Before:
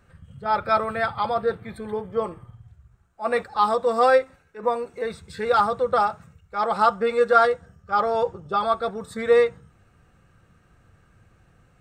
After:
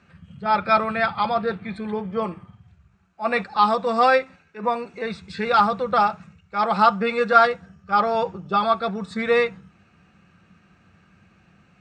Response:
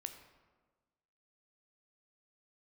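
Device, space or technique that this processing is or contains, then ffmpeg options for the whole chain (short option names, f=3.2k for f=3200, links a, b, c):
car door speaker: -af "highpass=94,equalizer=f=120:t=q:w=4:g=-8,equalizer=f=190:t=q:w=4:g=9,equalizer=f=490:t=q:w=4:g=-6,equalizer=f=2.5k:t=q:w=4:g=8,equalizer=f=4.4k:t=q:w=4:g=3,lowpass=f=6.7k:w=0.5412,lowpass=f=6.7k:w=1.3066,volume=2.5dB"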